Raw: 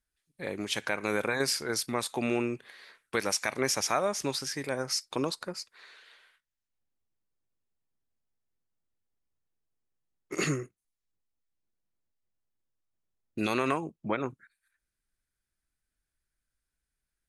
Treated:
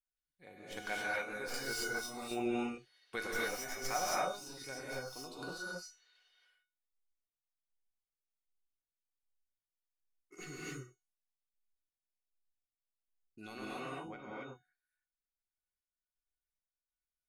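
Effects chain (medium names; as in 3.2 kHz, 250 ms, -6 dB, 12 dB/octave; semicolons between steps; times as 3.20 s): tracing distortion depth 0.044 ms; spectral noise reduction 9 dB; 4.10–5.05 s: compression, threshold -31 dBFS, peak gain reduction 6.5 dB; square tremolo 1.3 Hz, depth 65%, duty 25%; feedback comb 730 Hz, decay 0.33 s, mix 90%; gated-style reverb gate 300 ms rising, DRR -6 dB; trim +6.5 dB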